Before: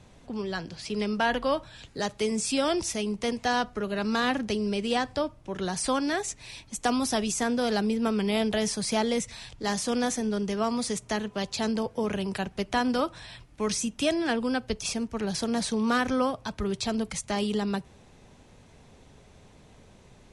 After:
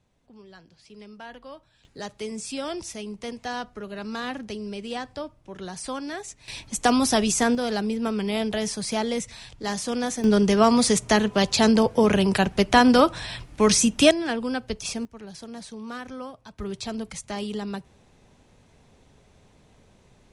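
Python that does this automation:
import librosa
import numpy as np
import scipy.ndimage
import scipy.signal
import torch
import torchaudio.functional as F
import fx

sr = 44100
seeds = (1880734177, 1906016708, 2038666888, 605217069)

y = fx.gain(x, sr, db=fx.steps((0.0, -16.0), (1.85, -5.5), (6.48, 6.0), (7.55, 0.0), (10.24, 10.0), (14.11, 0.0), (15.05, -11.0), (16.59, -3.0)))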